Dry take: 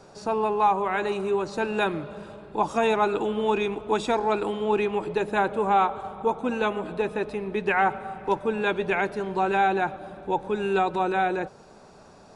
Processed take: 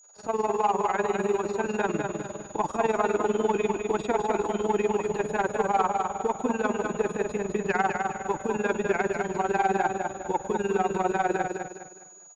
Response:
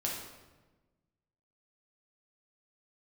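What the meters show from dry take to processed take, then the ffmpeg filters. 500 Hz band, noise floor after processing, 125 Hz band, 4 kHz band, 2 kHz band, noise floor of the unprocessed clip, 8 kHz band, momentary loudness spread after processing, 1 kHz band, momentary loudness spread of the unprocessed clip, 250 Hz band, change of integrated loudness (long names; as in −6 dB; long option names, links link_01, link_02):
−1.0 dB, −48 dBFS, 0.0 dB, −7.0 dB, −3.0 dB, −50 dBFS, can't be measured, 6 LU, −2.0 dB, 7 LU, −0.5 dB, −1.5 dB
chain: -filter_complex "[0:a]agate=range=-33dB:threshold=-41dB:ratio=3:detection=peak,acrossover=split=2600[link_01][link_02];[link_02]acompressor=threshold=-50dB:ratio=4:attack=1:release=60[link_03];[link_01][link_03]amix=inputs=2:normalize=0,highshelf=frequency=4700:gain=-6.5,asplit=2[link_04][link_05];[link_05]alimiter=limit=-23.5dB:level=0:latency=1,volume=-2.5dB[link_06];[link_04][link_06]amix=inputs=2:normalize=0,tremolo=f=20:d=0.857,acrossover=split=560|800[link_07][link_08][link_09];[link_07]aeval=exprs='sgn(val(0))*max(abs(val(0))-0.00299,0)':channel_layout=same[link_10];[link_10][link_08][link_09]amix=inputs=3:normalize=0,aeval=exprs='val(0)+0.00224*sin(2*PI*6800*n/s)':channel_layout=same,asoftclip=type=tanh:threshold=-14.5dB,aecho=1:1:205|410|615|820:0.562|0.191|0.065|0.0221"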